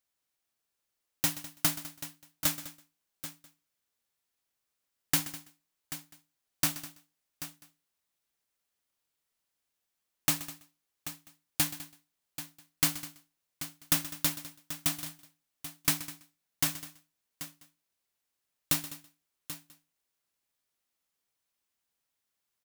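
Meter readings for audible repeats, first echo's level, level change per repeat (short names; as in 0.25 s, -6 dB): 5, -16.0 dB, no steady repeat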